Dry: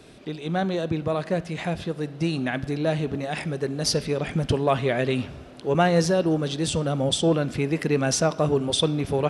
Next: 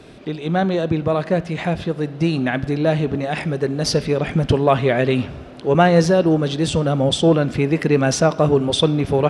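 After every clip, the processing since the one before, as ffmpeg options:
-af "highshelf=f=5.3k:g=-9.5,volume=6.5dB"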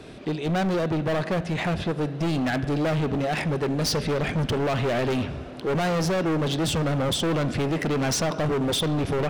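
-af "alimiter=limit=-8.5dB:level=0:latency=1:release=85,asoftclip=type=hard:threshold=-22dB"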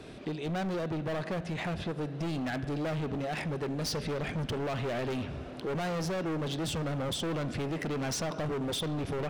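-af "acompressor=threshold=-30dB:ratio=2.5,volume=-4dB"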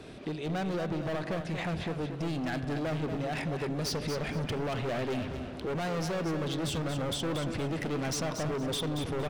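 -af "aecho=1:1:232|464|696:0.398|0.0995|0.0249"

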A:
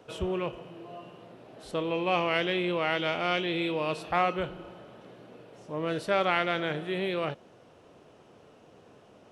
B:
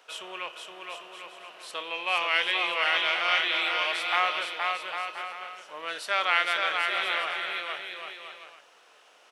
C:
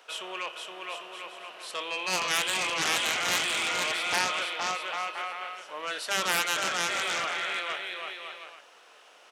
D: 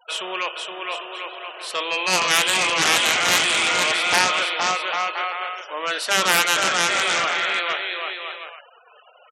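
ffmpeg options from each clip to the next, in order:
-filter_complex "[0:a]highpass=1.3k,asplit=2[a][b];[b]aecho=0:1:470|799|1029|1191|1303:0.631|0.398|0.251|0.158|0.1[c];[a][c]amix=inputs=2:normalize=0,volume=6dB"
-af "aeval=exprs='0.355*(cos(1*acos(clip(val(0)/0.355,-1,1)))-cos(1*PI/2))+0.178*(cos(7*acos(clip(val(0)/0.355,-1,1)))-cos(7*PI/2))':c=same,highpass=140,volume=-5.5dB"
-af "afftfilt=real='re*gte(hypot(re,im),0.00447)':imag='im*gte(hypot(re,im),0.00447)':win_size=1024:overlap=0.75,volume=9dB"

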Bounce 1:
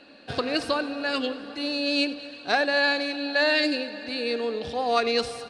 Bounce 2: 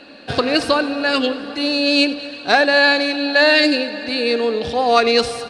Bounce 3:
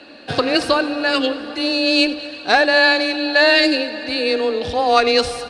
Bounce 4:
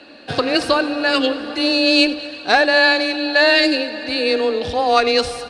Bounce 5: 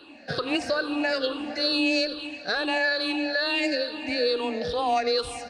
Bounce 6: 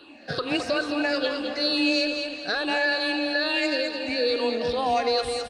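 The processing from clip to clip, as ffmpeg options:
-af "acontrast=48,volume=3.5dB"
-af "asubboost=boost=4.5:cutoff=56,afreqshift=13"
-af "dynaudnorm=f=190:g=7:m=11.5dB,volume=-1dB"
-af "afftfilt=real='re*pow(10,13/40*sin(2*PI*(0.63*log(max(b,1)*sr/1024/100)/log(2)-(-2.3)*(pts-256)/sr)))':imag='im*pow(10,13/40*sin(2*PI*(0.63*log(max(b,1)*sr/1024/100)/log(2)-(-2.3)*(pts-256)/sr)))':win_size=1024:overlap=0.75,alimiter=limit=-7.5dB:level=0:latency=1:release=141,volume=-8dB"
-af "aecho=1:1:213|426|639|852:0.473|0.156|0.0515|0.017"

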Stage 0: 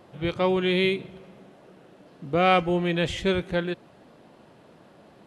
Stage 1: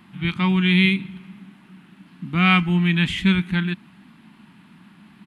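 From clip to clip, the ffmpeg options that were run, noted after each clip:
-af "firequalizer=gain_entry='entry(130,0);entry(190,13);entry(500,-23);entry(900,1);entry(2300,9);entry(5800,-3);entry(9800,5)':delay=0.05:min_phase=1"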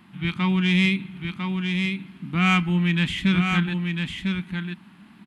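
-filter_complex "[0:a]asoftclip=type=tanh:threshold=-8.5dB,asplit=2[a][b];[b]aecho=0:1:1000:0.562[c];[a][c]amix=inputs=2:normalize=0,volume=-2dB"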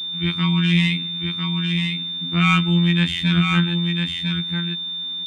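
-af "afftfilt=real='hypot(re,im)*cos(PI*b)':imag='0':win_size=2048:overlap=0.75,aeval=exprs='val(0)+0.0316*sin(2*PI*3600*n/s)':c=same,volume=4.5dB"

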